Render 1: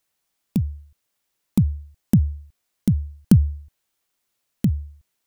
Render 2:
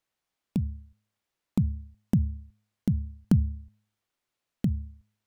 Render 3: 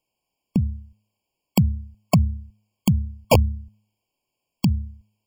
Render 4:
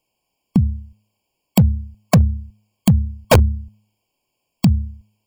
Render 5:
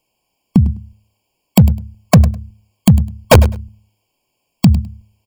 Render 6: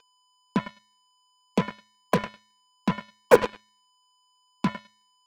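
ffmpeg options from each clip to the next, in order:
-filter_complex "[0:a]lowpass=f=3.3k:p=1,bandreject=f=105.5:t=h:w=4,bandreject=f=211:t=h:w=4,asplit=2[a][b];[b]acompressor=threshold=-22dB:ratio=6,volume=-2dB[c];[a][c]amix=inputs=2:normalize=0,volume=-9dB"
-af "aeval=exprs='(mod(5.31*val(0)+1,2)-1)/5.31':c=same,afftfilt=real='re*eq(mod(floor(b*sr/1024/1100),2),0)':imag='im*eq(mod(floor(b*sr/1024/1100),2),0)':win_size=1024:overlap=0.75,volume=7dB"
-af "asoftclip=type=hard:threshold=-12dB,volume=6dB"
-af "aecho=1:1:103|206:0.168|0.0269,volume=4.5dB"
-af "aeval=exprs='val(0)+0.1*sin(2*PI*1000*n/s)':c=same,highpass=f=230:w=0.5412,highpass=f=230:w=1.3066,equalizer=f=270:t=q:w=4:g=-5,equalizer=f=450:t=q:w=4:g=9,equalizer=f=690:t=q:w=4:g=-9,equalizer=f=1.5k:t=q:w=4:g=3,lowpass=f=2.2k:w=0.5412,lowpass=f=2.2k:w=1.3066,acrusher=bits=2:mix=0:aa=0.5,volume=-7.5dB"

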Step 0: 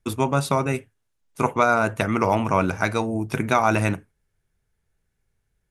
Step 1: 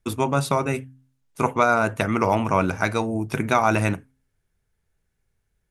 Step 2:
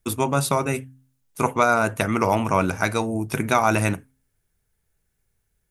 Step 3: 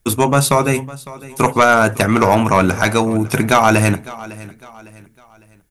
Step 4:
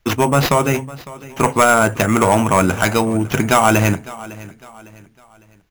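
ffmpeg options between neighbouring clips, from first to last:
-af "bandreject=f=131.5:t=h:w=4,bandreject=f=263:t=h:w=4"
-af "highshelf=f=8.2k:g=12"
-af "aeval=exprs='0.708*sin(PI/2*1.78*val(0)/0.708)':c=same,aecho=1:1:555|1110|1665:0.112|0.0426|0.0162"
-af "acrusher=samples=5:mix=1:aa=0.000001,volume=-1dB"

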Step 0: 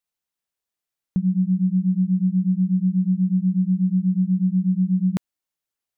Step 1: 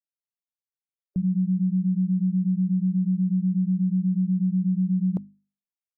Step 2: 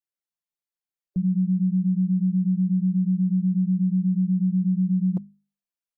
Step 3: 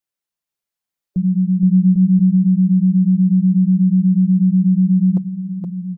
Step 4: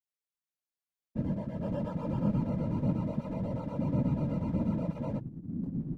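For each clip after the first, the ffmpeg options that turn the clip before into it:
-af "afftdn=nr=22:nf=-33,alimiter=limit=-18dB:level=0:latency=1:release=27,bandreject=f=50:t=h:w=6,bandreject=f=100:t=h:w=6,bandreject=f=150:t=h:w=6,bandreject=f=200:t=h:w=6,bandreject=f=250:t=h:w=6"
-af "aecho=1:1:5.8:0.65,volume=-3dB"
-af "aecho=1:1:470|799|1029|1191|1303:0.631|0.398|0.251|0.158|0.1,volume=6dB"
-af "asoftclip=type=hard:threshold=-18dB,flanger=delay=18:depth=5:speed=0.58,afftfilt=real='hypot(re,im)*cos(2*PI*random(0))':imag='hypot(re,im)*sin(2*PI*random(1))':win_size=512:overlap=0.75,volume=-3dB"

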